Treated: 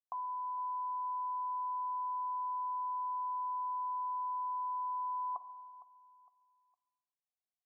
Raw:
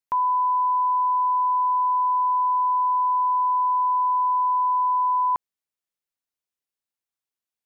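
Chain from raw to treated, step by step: vocal tract filter a; notch 980 Hz, Q 10; on a send: feedback echo 0.459 s, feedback 34%, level -17.5 dB; on the sum: non-linear reverb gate 0.47 s falling, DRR 11.5 dB

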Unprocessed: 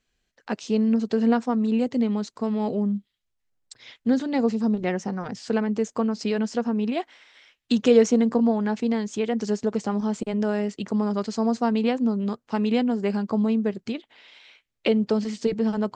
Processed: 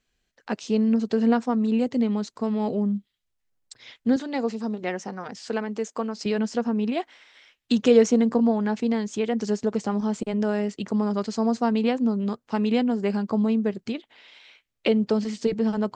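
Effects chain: 4.16–6.26 HPF 420 Hz 6 dB/oct

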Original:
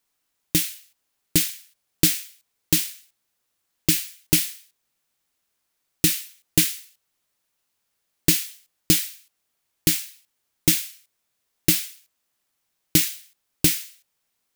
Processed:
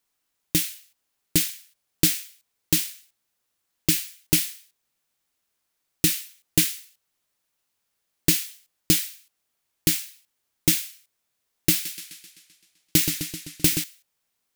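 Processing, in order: 11.72–13.84 warbling echo 0.129 s, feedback 61%, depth 95 cents, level -7 dB; gain -1.5 dB

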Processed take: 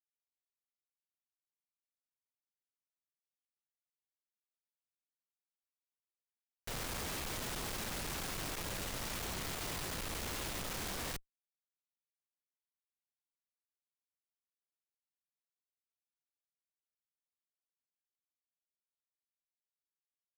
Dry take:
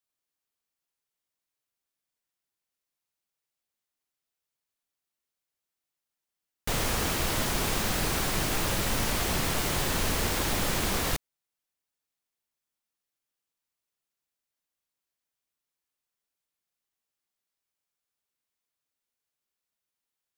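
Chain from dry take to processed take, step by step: Schmitt trigger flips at -41.5 dBFS; gain -6 dB

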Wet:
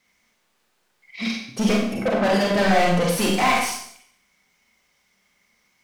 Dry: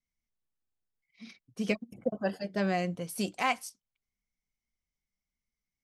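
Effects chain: 1.28–1.87 bell 1400 Hz -11 dB 2.6 oct; overdrive pedal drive 35 dB, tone 2500 Hz, clips at -15 dBFS; Schroeder reverb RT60 0.64 s, combs from 31 ms, DRR -1 dB; gain +1 dB

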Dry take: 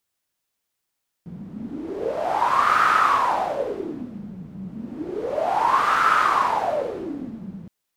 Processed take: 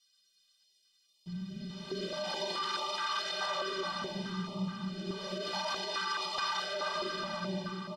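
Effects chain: LPF 8900 Hz 12 dB/oct; in parallel at -0.5 dB: compressor, threshold -29 dBFS, peak gain reduction 14 dB; on the sum: comb 5.2 ms, depth 71%; on a send: diffused feedback echo 0.532 s, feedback 43%, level -13 dB; on the sum: harmoniser -7 st -8 dB; tilt shelf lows -7 dB; metallic resonator 180 Hz, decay 0.21 s, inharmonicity 0.03; de-hum 75.17 Hz, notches 37; limiter -28 dBFS, peak gain reduction 16.5 dB; band shelf 4000 Hz +12.5 dB 1.1 oct; tape echo 0.235 s, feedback 74%, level -3 dB, low-pass 2700 Hz; stepped notch 4.7 Hz 320–1600 Hz

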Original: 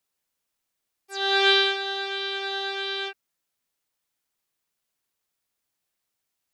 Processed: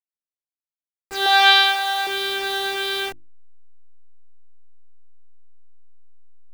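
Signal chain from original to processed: level-crossing sampler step -35.5 dBFS; 1.26–2.07 resonant low shelf 470 Hz -12 dB, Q 3; notches 50/100/150/200/250/300/350 Hz; gain +5.5 dB

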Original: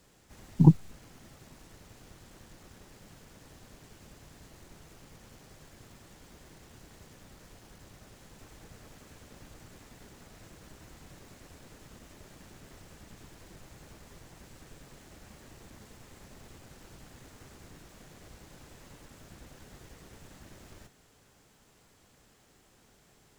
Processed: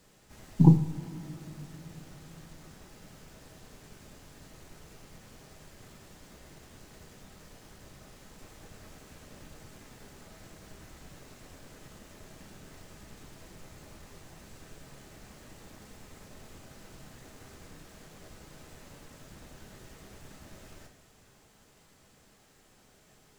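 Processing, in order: two-slope reverb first 0.5 s, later 4.9 s, from -18 dB, DRR 3.5 dB

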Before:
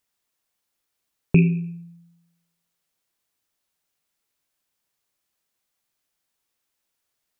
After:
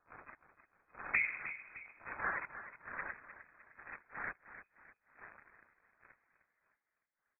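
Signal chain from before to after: wind noise 320 Hz -38 dBFS; Doppler pass-by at 2.3, 50 m/s, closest 8.9 m; treble ducked by the level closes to 1500 Hz, closed at -35.5 dBFS; reverb removal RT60 0.87 s; spectral gate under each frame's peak -20 dB weak; sample leveller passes 3; frequency-shifting echo 0.305 s, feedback 42%, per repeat -31 Hz, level -12 dB; inverted band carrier 2500 Hz; gain +14.5 dB

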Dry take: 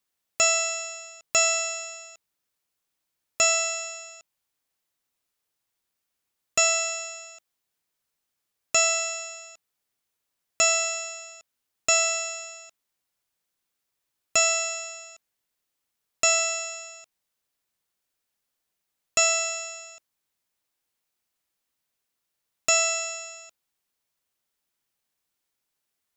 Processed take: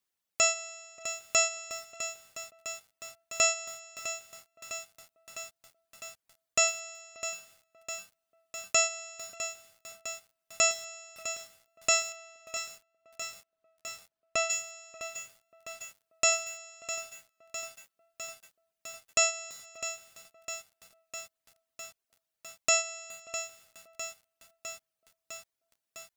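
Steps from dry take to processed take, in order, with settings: 12.12–14.5 LPF 2600 Hz 6 dB/oct; reverb removal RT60 1 s; tape echo 0.586 s, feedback 48%, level -19 dB, low-pass 1200 Hz; lo-fi delay 0.655 s, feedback 80%, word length 7-bit, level -11 dB; gain -3.5 dB

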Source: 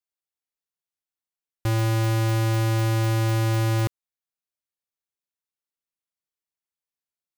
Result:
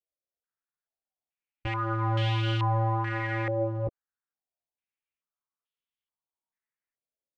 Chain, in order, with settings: chorus voices 4, 0.55 Hz, delay 15 ms, depth 2.3 ms; formant shift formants -3 st; stepped low-pass 2.3 Hz 570–3200 Hz; gain -2 dB

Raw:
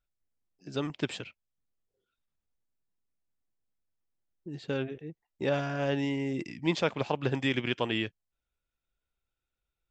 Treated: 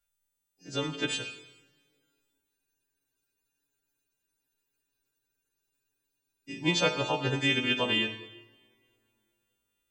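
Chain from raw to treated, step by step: frequency quantiser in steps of 2 st; two-slope reverb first 0.99 s, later 3.2 s, from -26 dB, DRR 6 dB; spectral freeze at 2.57, 3.93 s

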